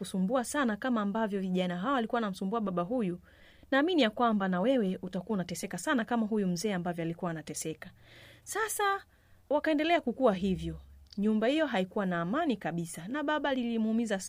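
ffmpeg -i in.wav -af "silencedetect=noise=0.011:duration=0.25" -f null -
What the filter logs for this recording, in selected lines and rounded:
silence_start: 3.16
silence_end: 3.72 | silence_duration: 0.56
silence_start: 7.88
silence_end: 8.48 | silence_duration: 0.60
silence_start: 8.98
silence_end: 9.51 | silence_duration: 0.53
silence_start: 10.77
silence_end: 11.13 | silence_duration: 0.36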